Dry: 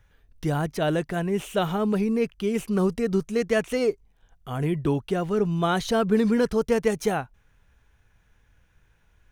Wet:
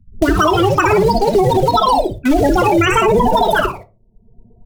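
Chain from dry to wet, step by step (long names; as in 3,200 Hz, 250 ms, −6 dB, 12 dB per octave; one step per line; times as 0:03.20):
spectral dynamics exaggerated over time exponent 2
low-pass that shuts in the quiet parts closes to 1,200 Hz, open at −21 dBFS
gate on every frequency bin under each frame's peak −20 dB strong
in parallel at −11 dB: bit-depth reduction 6 bits, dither none
on the sum: echo with shifted repeats 115 ms, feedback 35%, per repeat −120 Hz, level −4 dB
on a send at −9 dB: convolution reverb RT60 0.40 s, pre-delay 3 ms
on the sum: wrong playback speed 7.5 ips tape played at 15 ips
boost into a limiter +20 dB
multiband upward and downward compressor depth 70%
level −4 dB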